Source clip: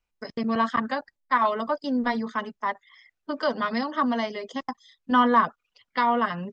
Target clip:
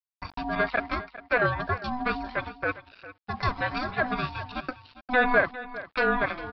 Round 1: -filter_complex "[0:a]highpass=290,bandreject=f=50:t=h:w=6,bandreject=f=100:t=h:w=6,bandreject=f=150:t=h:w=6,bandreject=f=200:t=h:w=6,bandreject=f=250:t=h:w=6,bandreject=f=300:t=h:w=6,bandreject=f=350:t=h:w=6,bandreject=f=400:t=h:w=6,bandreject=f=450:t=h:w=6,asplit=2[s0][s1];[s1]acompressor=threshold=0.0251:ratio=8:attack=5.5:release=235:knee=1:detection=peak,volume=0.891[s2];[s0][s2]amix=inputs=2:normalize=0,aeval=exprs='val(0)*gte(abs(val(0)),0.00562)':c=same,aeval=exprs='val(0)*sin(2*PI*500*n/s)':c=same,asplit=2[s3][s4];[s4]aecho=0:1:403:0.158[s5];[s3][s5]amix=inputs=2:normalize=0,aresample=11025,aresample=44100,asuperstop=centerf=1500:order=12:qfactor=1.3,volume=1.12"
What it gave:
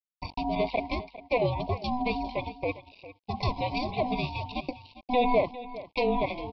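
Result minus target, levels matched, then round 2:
2 kHz band -9.5 dB; compression: peak gain reduction -8.5 dB
-filter_complex "[0:a]highpass=290,bandreject=f=50:t=h:w=6,bandreject=f=100:t=h:w=6,bandreject=f=150:t=h:w=6,bandreject=f=200:t=h:w=6,bandreject=f=250:t=h:w=6,bandreject=f=300:t=h:w=6,bandreject=f=350:t=h:w=6,bandreject=f=400:t=h:w=6,bandreject=f=450:t=h:w=6,asplit=2[s0][s1];[s1]acompressor=threshold=0.00794:ratio=8:attack=5.5:release=235:knee=1:detection=peak,volume=0.891[s2];[s0][s2]amix=inputs=2:normalize=0,aeval=exprs='val(0)*gte(abs(val(0)),0.00562)':c=same,aeval=exprs='val(0)*sin(2*PI*500*n/s)':c=same,asplit=2[s3][s4];[s4]aecho=0:1:403:0.158[s5];[s3][s5]amix=inputs=2:normalize=0,aresample=11025,aresample=44100,volume=1.12"

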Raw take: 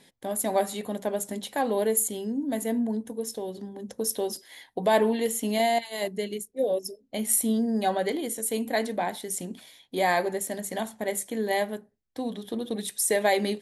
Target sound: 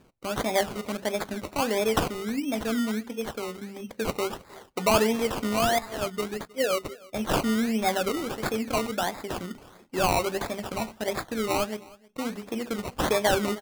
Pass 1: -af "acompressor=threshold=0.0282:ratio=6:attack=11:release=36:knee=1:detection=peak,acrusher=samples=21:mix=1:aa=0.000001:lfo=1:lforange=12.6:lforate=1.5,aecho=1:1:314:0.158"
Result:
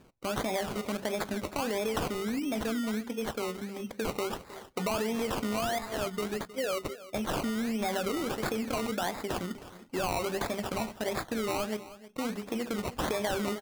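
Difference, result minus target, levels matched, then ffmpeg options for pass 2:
compression: peak gain reduction +12 dB; echo-to-direct +7 dB
-af "acrusher=samples=21:mix=1:aa=0.000001:lfo=1:lforange=12.6:lforate=1.5,aecho=1:1:314:0.0708"

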